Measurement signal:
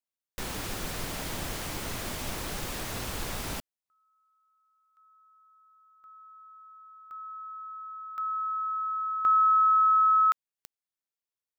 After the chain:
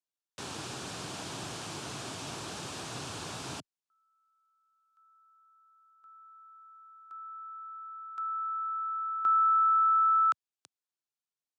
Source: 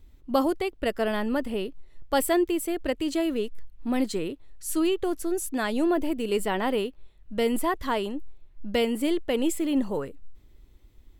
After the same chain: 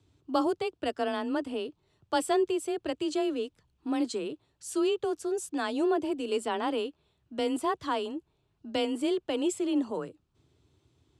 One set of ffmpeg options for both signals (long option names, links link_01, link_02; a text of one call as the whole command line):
ffmpeg -i in.wav -af "afreqshift=25,highpass=frequency=110:width=0.5412,highpass=frequency=110:width=1.3066,equalizer=frequency=210:width_type=q:width=4:gain=-6,equalizer=frequency=530:width_type=q:width=4:gain=-5,equalizer=frequency=2000:width_type=q:width=4:gain=-9,lowpass=frequency=8800:width=0.5412,lowpass=frequency=8800:width=1.3066,volume=-2dB" out.wav